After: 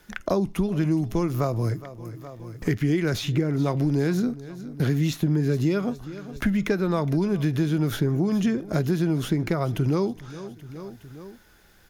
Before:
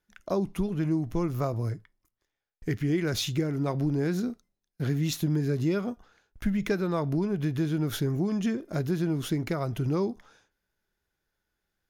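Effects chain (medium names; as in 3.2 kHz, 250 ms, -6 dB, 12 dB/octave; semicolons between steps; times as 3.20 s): on a send: feedback delay 415 ms, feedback 36%, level -22 dB; on the sum: three bands compressed up and down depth 70%; trim +4 dB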